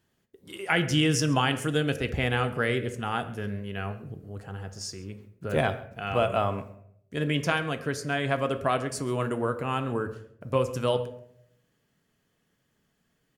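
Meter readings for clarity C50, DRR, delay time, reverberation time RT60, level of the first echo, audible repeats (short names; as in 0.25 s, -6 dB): 12.5 dB, 8.0 dB, 0.135 s, 0.70 s, -21.0 dB, 1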